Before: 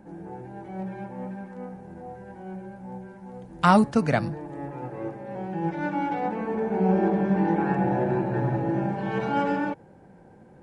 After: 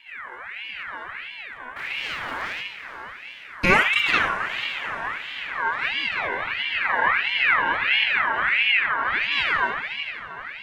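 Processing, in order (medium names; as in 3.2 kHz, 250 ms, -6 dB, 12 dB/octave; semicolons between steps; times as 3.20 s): 1.76–2.61 s: waveshaping leveller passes 5; 8.67–9.32 s: low-pass 1.9 kHz 6 dB/octave; echo that smears into a reverb 458 ms, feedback 60%, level -11.5 dB; simulated room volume 3600 m³, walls furnished, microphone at 2.9 m; ring modulator with a swept carrier 1.9 kHz, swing 35%, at 1.5 Hz; trim +1.5 dB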